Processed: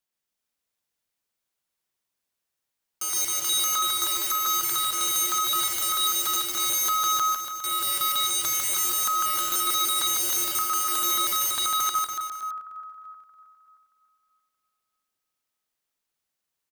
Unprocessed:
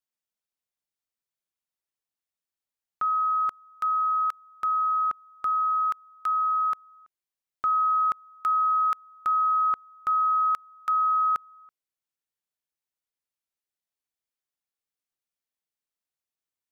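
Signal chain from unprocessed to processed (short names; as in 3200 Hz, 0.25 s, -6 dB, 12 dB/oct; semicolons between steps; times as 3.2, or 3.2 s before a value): regenerating reverse delay 0.313 s, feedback 46%, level -6 dB; feedback echo 82 ms, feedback 49%, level -23.5 dB; wrapped overs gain 27.5 dB; on a send: bouncing-ball echo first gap 0.15 s, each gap 0.9×, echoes 5; on the sum: gain +5 dB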